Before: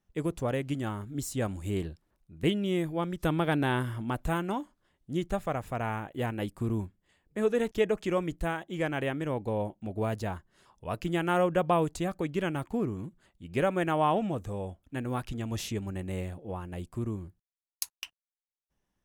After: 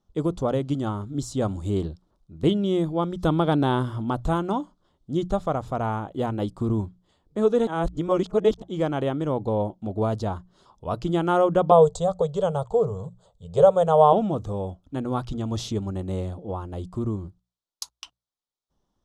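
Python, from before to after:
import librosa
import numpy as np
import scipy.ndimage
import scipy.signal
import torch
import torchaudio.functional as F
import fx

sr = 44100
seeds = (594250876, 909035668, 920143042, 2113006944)

y = fx.curve_eq(x, sr, hz=(170.0, 310.0, 450.0, 990.0, 2300.0, 3500.0, 5300.0, 7900.0, 16000.0), db=(0, -30, 10, 1, -12, 1, -3, 8, -23), at=(11.71, 14.13))
y = fx.edit(y, sr, fx.reverse_span(start_s=7.67, length_s=0.95), tone=tone)
y = scipy.signal.sosfilt(scipy.signal.butter(2, 5700.0, 'lowpass', fs=sr, output='sos'), y)
y = fx.band_shelf(y, sr, hz=2100.0, db=-13.0, octaves=1.0)
y = fx.hum_notches(y, sr, base_hz=60, count=3)
y = y * librosa.db_to_amplitude(6.5)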